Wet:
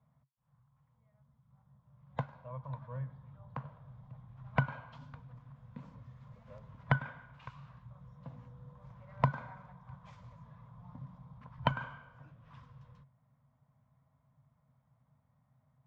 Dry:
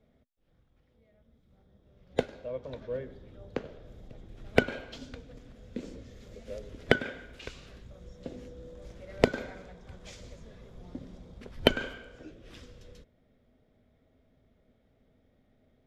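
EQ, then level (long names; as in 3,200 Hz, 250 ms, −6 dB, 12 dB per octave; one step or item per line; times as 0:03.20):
pair of resonant band-passes 370 Hz, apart 2.9 octaves
+10.0 dB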